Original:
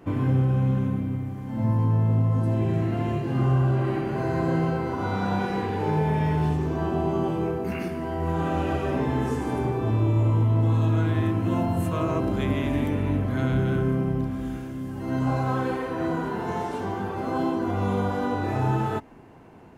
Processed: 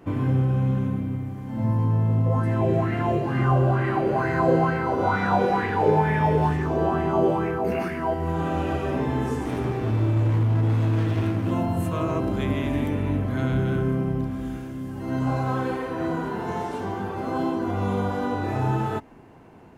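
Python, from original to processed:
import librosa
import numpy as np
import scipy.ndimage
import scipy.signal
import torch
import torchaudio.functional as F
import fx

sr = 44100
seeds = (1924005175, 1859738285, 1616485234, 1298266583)

y = fx.bell_lfo(x, sr, hz=2.2, low_hz=470.0, high_hz=2000.0, db=14, at=(2.26, 8.14))
y = fx.lower_of_two(y, sr, delay_ms=0.35, at=(9.45, 11.51))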